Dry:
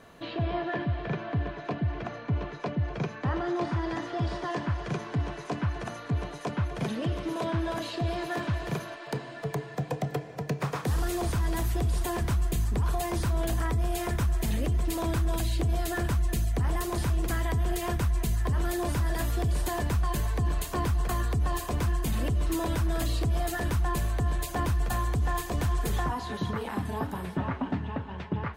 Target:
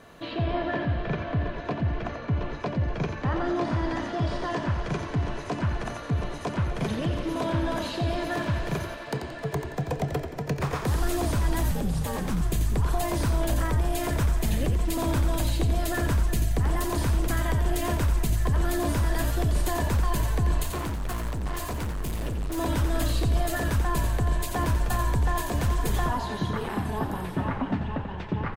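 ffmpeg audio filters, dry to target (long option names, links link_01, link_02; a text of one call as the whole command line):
ffmpeg -i in.wav -filter_complex "[0:a]asettb=1/sr,asplit=3[link_01][link_02][link_03];[link_01]atrim=end=11.714[link_04];[link_02]atrim=start=11.71:end=12.41,asetpts=PTS-STARTPTS,afade=type=in:duration=0.004:curve=qsin,afade=type=out:start_time=0.696:duration=0.004:curve=qsin,aeval=exprs='val(0)*sin(2*PI*110*n/s)':channel_layout=same[link_05];[link_03]atrim=start=12.406[link_06];[link_04][link_05]acrossfade=duration=0.004:curve1=hsin:curve2=qsin[link_07];[link_07][link_06]acrossfade=duration=0.004:curve1=qsin:curve2=hsin,asettb=1/sr,asplit=3[link_08][link_09][link_10];[link_08]atrim=end=20.634[link_11];[link_09]atrim=start=20.63:end=22.58,asetpts=PTS-STARTPTS,afade=type=in:duration=0.004:curve=qsin,afade=type=out:start_time=1.946:duration=0.004:curve=qsin,volume=31dB,asoftclip=hard,volume=-31dB[link_12];[link_10]atrim=start=22.576[link_13];[link_11][link_12]acrossfade=duration=0.004:curve1=hsin:curve2=qsin[link_14];[link_14][link_13]acrossfade=duration=0.004:curve1=qsin:curve2=hsin,asplit=6[link_15][link_16][link_17][link_18][link_19][link_20];[link_16]adelay=88,afreqshift=-62,volume=-7dB[link_21];[link_17]adelay=176,afreqshift=-124,volume=-14.5dB[link_22];[link_18]adelay=264,afreqshift=-186,volume=-22.1dB[link_23];[link_19]adelay=352,afreqshift=-248,volume=-29.6dB[link_24];[link_20]adelay=440,afreqshift=-310,volume=-37.1dB[link_25];[link_15][link_21][link_22][link_23][link_24][link_25]amix=inputs=6:normalize=0,volume=2dB" out.wav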